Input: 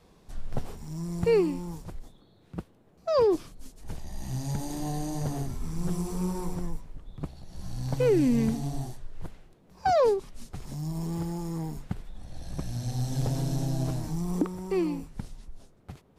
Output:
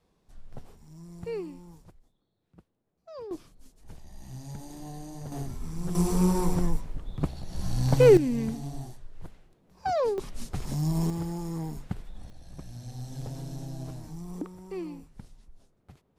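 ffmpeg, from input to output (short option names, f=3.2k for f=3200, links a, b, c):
-af "asetnsamples=n=441:p=0,asendcmd='1.91 volume volume -19dB;3.31 volume volume -9dB;5.32 volume volume -2.5dB;5.95 volume volume 7dB;8.17 volume volume -4.5dB;10.18 volume volume 6dB;11.1 volume volume -0.5dB;12.3 volume volume -9dB',volume=-12dB"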